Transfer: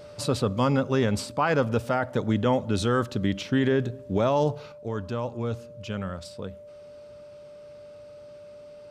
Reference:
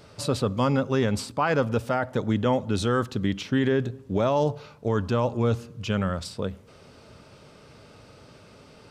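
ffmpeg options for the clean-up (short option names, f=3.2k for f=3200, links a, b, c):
-af "bandreject=f=590:w=30,asetnsamples=n=441:p=0,asendcmd='4.72 volume volume 6.5dB',volume=0dB"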